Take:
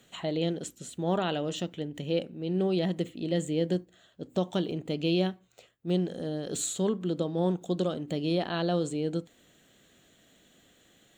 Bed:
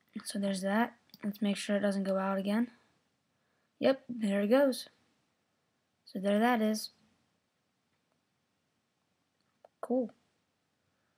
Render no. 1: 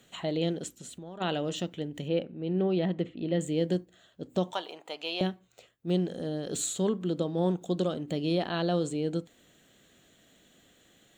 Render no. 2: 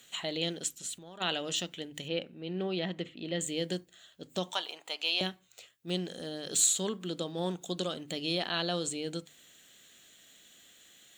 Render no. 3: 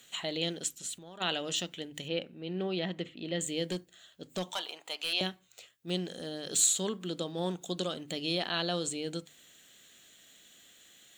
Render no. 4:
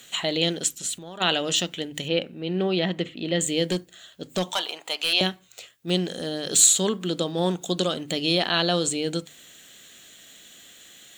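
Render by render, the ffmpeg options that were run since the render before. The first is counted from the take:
-filter_complex "[0:a]asplit=3[a][b][c];[a]afade=t=out:st=0.68:d=0.02[d];[b]acompressor=threshold=-39dB:ratio=16:attack=3.2:release=140:knee=1:detection=peak,afade=t=in:st=0.68:d=0.02,afade=t=out:st=1.2:d=0.02[e];[c]afade=t=in:st=1.2:d=0.02[f];[d][e][f]amix=inputs=3:normalize=0,asettb=1/sr,asplit=3[g][h][i];[g]atrim=end=2.084[j];[h]atrim=start=2.08:end=3.41,asetpts=PTS-STARTPTS,afade=t=in:d=0.004:c=qsin,afade=t=out:st=1.326:d=0.004:c=qsin,lowpass=2.9k[k];[i]atrim=start=3.406[l];[j][k]acrossfade=d=0.004:c1=hsin:c2=qsin[m];[m][l]acrossfade=d=0.004:c1=qsin:c2=hsin,asettb=1/sr,asplit=3[n][o][p];[n]atrim=end=4.534[q];[o]atrim=start=4.53:end=5.21,asetpts=PTS-STARTPTS,afade=t=in:d=0.004:c=qsin,afade=t=out:st=0.676:d=0.004:c=qsin,highpass=f=870:t=q:w=2.8[r];[p]atrim=start=5.206[s];[q][r]acrossfade=d=0.004:c1=hsin:c2=qsin[t];[t][s]acrossfade=d=0.004:c1=qsin:c2=hsin"
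-af "tiltshelf=f=1.3k:g=-8,bandreject=f=50:t=h:w=6,bandreject=f=100:t=h:w=6,bandreject=f=150:t=h:w=6"
-filter_complex "[0:a]asettb=1/sr,asplit=3[a][b][c];[a]atrim=end=3.704[d];[b]atrim=start=3.7:end=5.13,asetpts=PTS-STARTPTS,afade=t=in:d=0.004:c=qsin,afade=t=out:st=1.426:d=0.004:c=qsin,volume=28dB,asoftclip=hard,volume=-28dB[e];[c]atrim=start=5.126[f];[d][e]acrossfade=d=0.004:c1=hsin:c2=qsin[g];[g][f]acrossfade=d=0.004:c1=qsin:c2=hsin"
-af "volume=9.5dB"

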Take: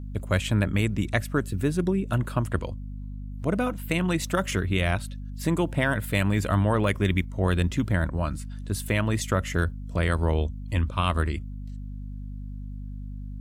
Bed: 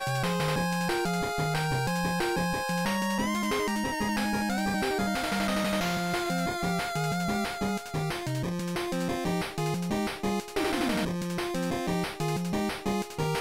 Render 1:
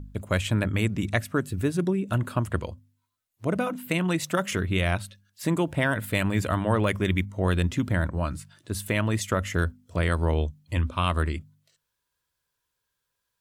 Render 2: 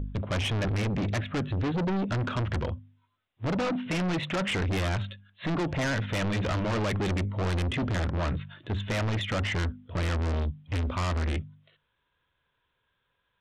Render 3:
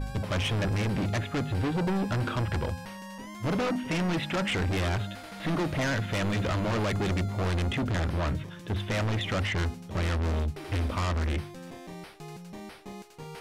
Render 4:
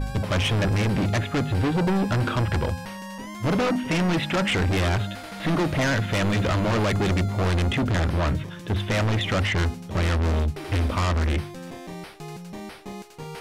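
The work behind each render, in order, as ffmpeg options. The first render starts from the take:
-af "bandreject=f=50:t=h:w=4,bandreject=f=100:t=h:w=4,bandreject=f=150:t=h:w=4,bandreject=f=200:t=h:w=4,bandreject=f=250:t=h:w=4"
-af "aresample=8000,volume=29dB,asoftclip=hard,volume=-29dB,aresample=44100,aeval=exprs='0.0708*(cos(1*acos(clip(val(0)/0.0708,-1,1)))-cos(1*PI/2))+0.0251*(cos(5*acos(clip(val(0)/0.0708,-1,1)))-cos(5*PI/2))+0.00158*(cos(7*acos(clip(val(0)/0.0708,-1,1)))-cos(7*PI/2))':c=same"
-filter_complex "[1:a]volume=-13.5dB[a];[0:a][a]amix=inputs=2:normalize=0"
-af "volume=5.5dB"

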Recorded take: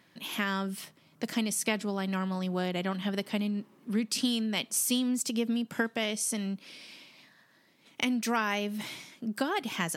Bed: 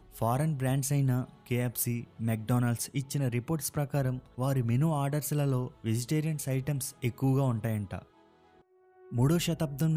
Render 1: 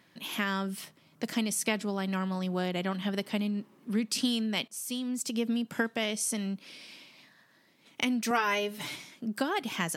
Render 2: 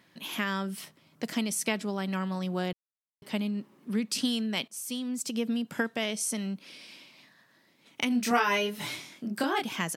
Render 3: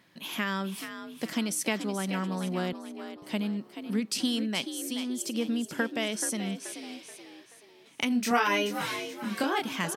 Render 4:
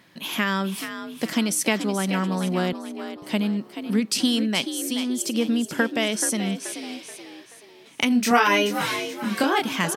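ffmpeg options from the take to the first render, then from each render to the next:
-filter_complex "[0:a]asettb=1/sr,asplit=3[a][b][c];[a]atrim=end=8.304[d];[b]atrim=start=8.3:end=8.96,asetpts=PTS-STARTPTS,afade=t=in:d=0.004:c=qsin,afade=t=out:st=0.656:d=0.004:c=qsin,aecho=1:1:6.9:0.82,atrim=end_sample=29106[e];[c]atrim=start=8.956[f];[d][e]acrossfade=d=0.004:c1=hsin:c2=qsin[g];[g][f]acrossfade=d=0.004:c1=qsin:c2=hsin,asplit=2[h][i];[h]atrim=end=4.68,asetpts=PTS-STARTPTS,afade=t=out:st=4.676:d=0.004:c=hsin:silence=0.199526[j];[i]atrim=start=4.68,asetpts=PTS-STARTPTS,afade=t=in:d=0.79:silence=0.199526[k];[j][k]concat=n=2:v=0:a=1"
-filter_complex "[0:a]asplit=3[a][b][c];[a]afade=t=out:st=8.1:d=0.02[d];[b]asplit=2[e][f];[f]adelay=25,volume=-2dB[g];[e][g]amix=inputs=2:normalize=0,afade=t=in:st=8.1:d=0.02,afade=t=out:st=9.64:d=0.02[h];[c]afade=t=in:st=9.64:d=0.02[i];[d][h][i]amix=inputs=3:normalize=0,asplit=3[j][k][l];[j]atrim=end=2.73,asetpts=PTS-STARTPTS,afade=t=out:st=2.726:d=0.004:c=hsin[m];[k]atrim=start=2.73:end=3.22,asetpts=PTS-STARTPTS,volume=0[n];[l]atrim=start=3.22,asetpts=PTS-STARTPTS,afade=t=in:d=0.004:c=hsin[o];[m][n][o]concat=n=3:v=0:a=1"
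-filter_complex "[0:a]asplit=5[a][b][c][d][e];[b]adelay=430,afreqshift=58,volume=-10dB[f];[c]adelay=860,afreqshift=116,volume=-17.7dB[g];[d]adelay=1290,afreqshift=174,volume=-25.5dB[h];[e]adelay=1720,afreqshift=232,volume=-33.2dB[i];[a][f][g][h][i]amix=inputs=5:normalize=0"
-af "volume=7dB"

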